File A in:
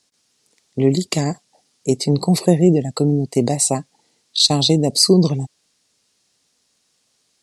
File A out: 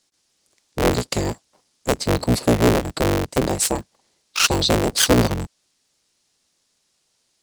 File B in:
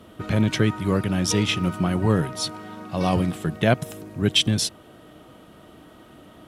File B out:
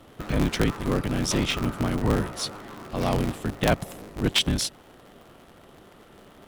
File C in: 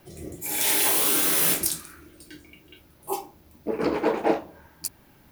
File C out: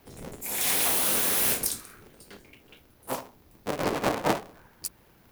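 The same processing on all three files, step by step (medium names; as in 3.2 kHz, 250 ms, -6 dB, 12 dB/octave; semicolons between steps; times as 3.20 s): cycle switcher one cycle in 3, inverted; trim -3 dB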